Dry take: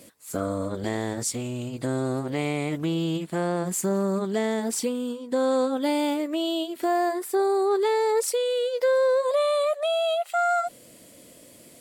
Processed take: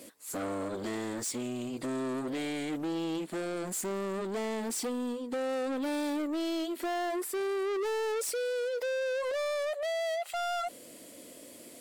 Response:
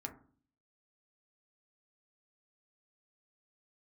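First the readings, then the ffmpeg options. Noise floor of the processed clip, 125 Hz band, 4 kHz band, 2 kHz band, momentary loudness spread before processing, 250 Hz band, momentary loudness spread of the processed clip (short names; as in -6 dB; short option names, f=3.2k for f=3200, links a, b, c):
-50 dBFS, -14.5 dB, -7.5 dB, -4.5 dB, 7 LU, -6.5 dB, 5 LU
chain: -af "asoftclip=type=tanh:threshold=-31.5dB,lowshelf=f=200:t=q:w=1.5:g=-7"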